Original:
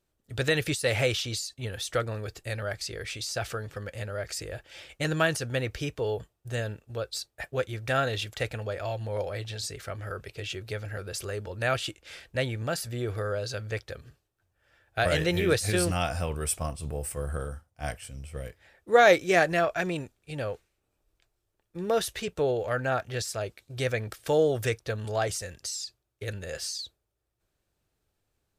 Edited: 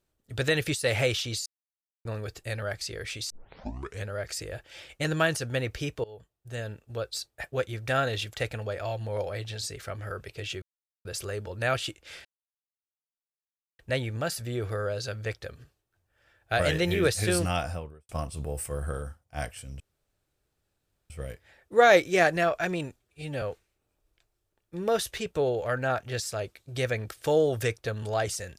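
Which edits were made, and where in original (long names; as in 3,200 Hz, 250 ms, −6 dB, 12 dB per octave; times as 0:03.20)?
0:01.46–0:02.05: silence
0:03.30: tape start 0.76 s
0:06.04–0:06.97: fade in, from −21 dB
0:10.62–0:11.05: silence
0:12.25: splice in silence 1.54 s
0:15.98–0:16.55: fade out and dull
0:18.26: splice in room tone 1.30 s
0:20.16–0:20.44: time-stretch 1.5×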